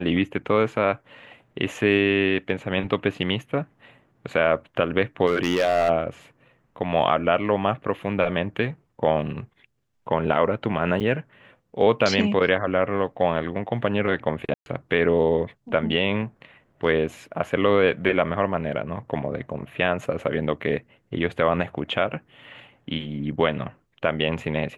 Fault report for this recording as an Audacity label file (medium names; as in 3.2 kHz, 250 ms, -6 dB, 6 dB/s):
5.260000	5.890000	clipped -16 dBFS
11.000000	11.010000	dropout 7.4 ms
14.540000	14.660000	dropout 121 ms